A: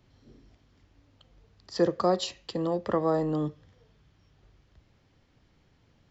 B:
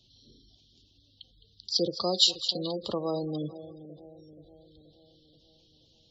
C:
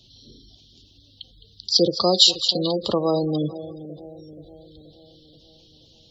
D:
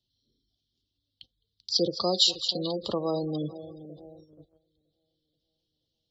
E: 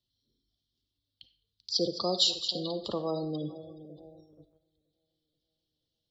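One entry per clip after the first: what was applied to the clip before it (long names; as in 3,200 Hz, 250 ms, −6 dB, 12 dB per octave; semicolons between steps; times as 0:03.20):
high shelf with overshoot 2,600 Hz +12.5 dB, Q 3; echo with a time of its own for lows and highs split 760 Hz, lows 479 ms, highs 212 ms, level −14 dB; gate on every frequency bin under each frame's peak −20 dB strong; level −4.5 dB
boost into a limiter +10.5 dB; level −1 dB
noise gate −41 dBFS, range −20 dB; level −7.5 dB
convolution reverb RT60 0.45 s, pre-delay 15 ms, DRR 11.5 dB; level −3.5 dB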